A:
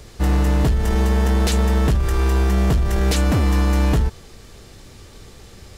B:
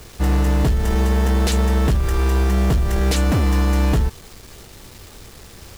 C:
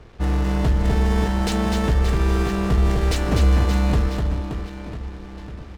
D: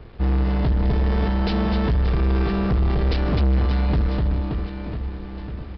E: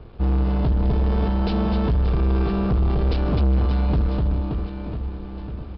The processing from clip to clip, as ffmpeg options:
-af "acrusher=bits=6:mix=0:aa=0.000001"
-af "aecho=1:1:250|575|997.5|1547|2261:0.631|0.398|0.251|0.158|0.1,adynamicsmooth=sensitivity=8:basefreq=1.5k,volume=-3.5dB"
-af "lowshelf=f=450:g=4,aresample=11025,asoftclip=type=tanh:threshold=-15.5dB,aresample=44100"
-af "lowpass=f=3.4k:p=1,equalizer=f=1.9k:w=3.2:g=-8.5"

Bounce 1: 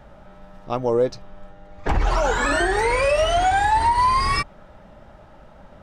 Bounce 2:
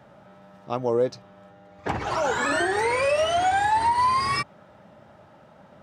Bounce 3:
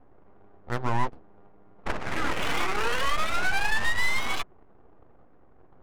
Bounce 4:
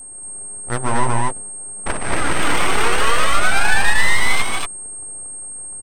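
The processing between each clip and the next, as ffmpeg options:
-af "highpass=f=96:w=0.5412,highpass=f=96:w=1.3066,volume=-3dB"
-af "aeval=exprs='abs(val(0))':c=same,adynamicsmooth=sensitivity=5.5:basefreq=610"
-filter_complex "[0:a]aeval=exprs='val(0)+0.01*sin(2*PI*8500*n/s)':c=same,asplit=2[a][b];[b]aecho=0:1:148.7|233.2:0.398|0.891[c];[a][c]amix=inputs=2:normalize=0,volume=6.5dB"

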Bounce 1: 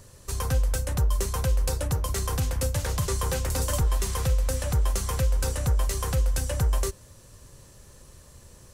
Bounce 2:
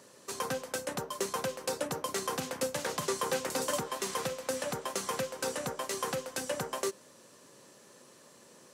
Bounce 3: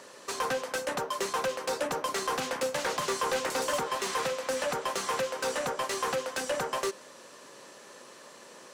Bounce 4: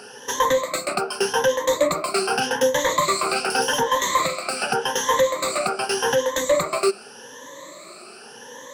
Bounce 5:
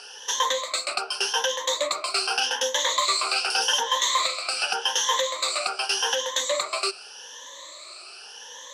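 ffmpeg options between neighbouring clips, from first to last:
-af "highpass=f=210:w=0.5412,highpass=f=210:w=1.3066,highshelf=f=7.8k:g=-9"
-filter_complex "[0:a]asplit=2[a][b];[b]highpass=f=720:p=1,volume=19dB,asoftclip=type=tanh:threshold=-17.5dB[c];[a][c]amix=inputs=2:normalize=0,lowpass=f=3.2k:p=1,volume=-6dB,volume=-2dB"
-af "afftfilt=real='re*pow(10,20/40*sin(2*PI*(1.1*log(max(b,1)*sr/1024/100)/log(2)-(0.85)*(pts-256)/sr)))':imag='im*pow(10,20/40*sin(2*PI*(1.1*log(max(b,1)*sr/1024/100)/log(2)-(0.85)*(pts-256)/sr)))':win_size=1024:overlap=0.75,volume=5dB"
-af "highpass=710,lowpass=4.2k,aexciter=amount=3.3:drive=6.9:freq=2.8k,volume=-3.5dB"

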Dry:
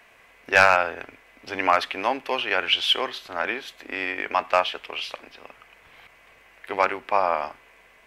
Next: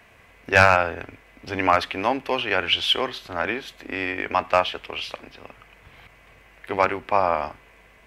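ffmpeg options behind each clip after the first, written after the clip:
-af "equalizer=f=81:t=o:w=3:g=14"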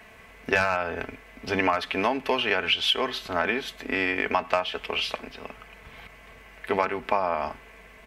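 -af "aecho=1:1:4.6:0.44,acompressor=threshold=-22dB:ratio=10,volume=2.5dB"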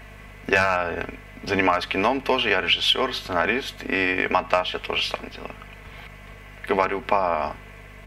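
-af "aeval=exprs='val(0)+0.00447*(sin(2*PI*50*n/s)+sin(2*PI*2*50*n/s)/2+sin(2*PI*3*50*n/s)/3+sin(2*PI*4*50*n/s)/4+sin(2*PI*5*50*n/s)/5)':c=same,volume=3.5dB"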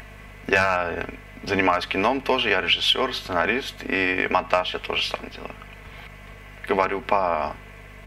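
-af "acompressor=mode=upward:threshold=-40dB:ratio=2.5"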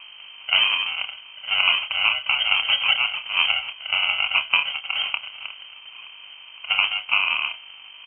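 -filter_complex "[0:a]acrusher=samples=31:mix=1:aa=0.000001,asplit=2[a][b];[b]adelay=28,volume=-8.5dB[c];[a][c]amix=inputs=2:normalize=0,lowpass=f=2.7k:t=q:w=0.5098,lowpass=f=2.7k:t=q:w=0.6013,lowpass=f=2.7k:t=q:w=0.9,lowpass=f=2.7k:t=q:w=2.563,afreqshift=-3200"

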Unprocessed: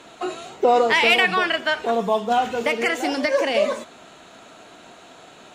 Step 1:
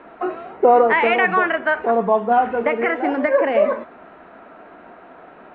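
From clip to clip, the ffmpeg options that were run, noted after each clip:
-af "lowpass=f=1.9k:w=0.5412,lowpass=f=1.9k:w=1.3066,equalizer=f=120:w=2.7:g=-12.5,volume=4dB"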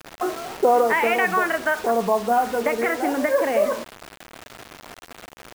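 -filter_complex "[0:a]asplit=2[a][b];[b]acompressor=threshold=-25dB:ratio=12,volume=2.5dB[c];[a][c]amix=inputs=2:normalize=0,acrusher=bits=4:mix=0:aa=0.000001,volume=-6dB"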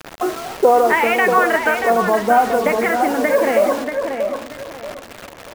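-filter_complex "[0:a]aphaser=in_gain=1:out_gain=1:delay=3.7:decay=0.22:speed=0.41:type=sinusoidal,asplit=2[a][b];[b]adelay=634,lowpass=f=3k:p=1,volume=-6dB,asplit=2[c][d];[d]adelay=634,lowpass=f=3k:p=1,volume=0.29,asplit=2[e][f];[f]adelay=634,lowpass=f=3k:p=1,volume=0.29,asplit=2[g][h];[h]adelay=634,lowpass=f=3k:p=1,volume=0.29[i];[a][c][e][g][i]amix=inputs=5:normalize=0,volume=4dB"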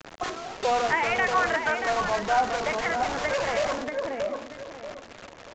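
-filter_complex "[0:a]acrossover=split=520|4800[a][b][c];[a]aeval=exprs='(mod(10.6*val(0)+1,2)-1)/10.6':c=same[d];[d][b][c]amix=inputs=3:normalize=0,aresample=16000,aresample=44100,volume=-8dB"

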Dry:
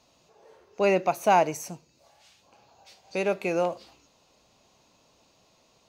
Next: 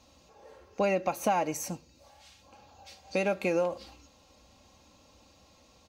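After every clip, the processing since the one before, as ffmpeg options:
-af "equalizer=f=75:t=o:w=1.5:g=12.5,aecho=1:1:3.7:0.52,acompressor=threshold=-25dB:ratio=6,volume=1dB"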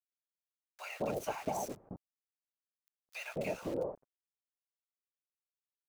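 -filter_complex "[0:a]afftfilt=real='hypot(re,im)*cos(2*PI*random(0))':imag='hypot(re,im)*sin(2*PI*random(1))':win_size=512:overlap=0.75,aeval=exprs='val(0)*gte(abs(val(0)),0.00631)':c=same,acrossover=split=1000[a][b];[a]adelay=210[c];[c][b]amix=inputs=2:normalize=0,volume=-2dB"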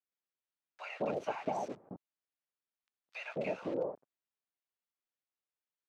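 -af "highpass=160,lowpass=3.3k,volume=1dB"

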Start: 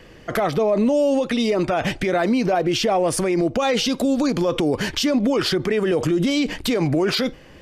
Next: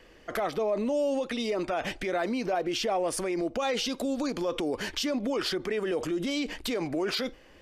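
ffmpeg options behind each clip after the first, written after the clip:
-af "equalizer=f=130:w=1.2:g=-12,volume=-8dB"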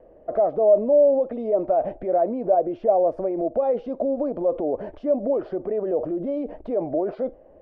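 -af "lowpass=f=630:t=q:w=4.9"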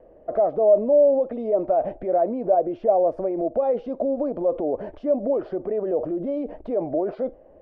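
-af anull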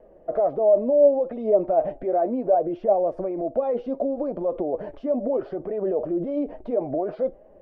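-af "flanger=delay=4.6:depth=4:regen=49:speed=0.67:shape=triangular,volume=3.5dB"

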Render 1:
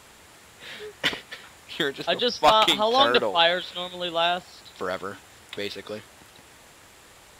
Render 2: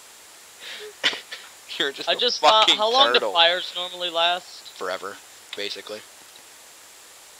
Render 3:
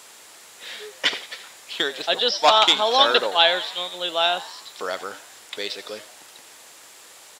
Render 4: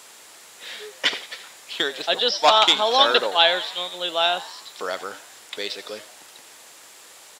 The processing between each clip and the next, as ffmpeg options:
-filter_complex "[0:a]bass=f=250:g=-14,treble=f=4k:g=10,acrossover=split=6500[a][b];[b]acompressor=threshold=-50dB:ratio=4:attack=1:release=60[c];[a][c]amix=inputs=2:normalize=0,volume=1.5dB"
-filter_complex "[0:a]highpass=99,asplit=6[a][b][c][d][e][f];[b]adelay=86,afreqshift=100,volume=-16dB[g];[c]adelay=172,afreqshift=200,volume=-21.7dB[h];[d]adelay=258,afreqshift=300,volume=-27.4dB[i];[e]adelay=344,afreqshift=400,volume=-33dB[j];[f]adelay=430,afreqshift=500,volume=-38.7dB[k];[a][g][h][i][j][k]amix=inputs=6:normalize=0"
-af "highpass=73"

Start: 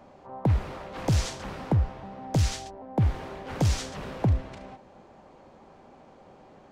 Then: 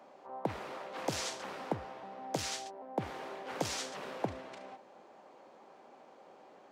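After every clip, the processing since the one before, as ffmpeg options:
-af "highpass=350,volume=-3dB"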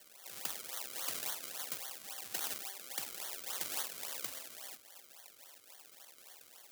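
-af "acrusher=samples=34:mix=1:aa=0.000001:lfo=1:lforange=34:lforate=3.6,volume=31dB,asoftclip=hard,volume=-31dB,aderivative,volume=10.5dB"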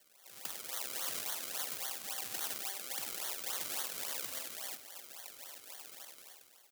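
-af "dynaudnorm=f=140:g=9:m=14dB,alimiter=limit=-10.5dB:level=0:latency=1:release=114,aecho=1:1:96:0.2,volume=-7dB"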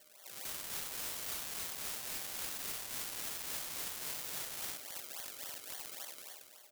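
-af "aeval=exprs='(mod(23.7*val(0)+1,2)-1)/23.7':c=same,aeval=exprs='val(0)+0.000158*sin(2*PI*610*n/s)':c=same,volume=4.5dB"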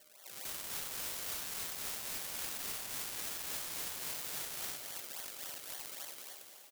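-af "aecho=1:1:199|398|597|796|995|1194:0.316|0.174|0.0957|0.0526|0.0289|0.0159"

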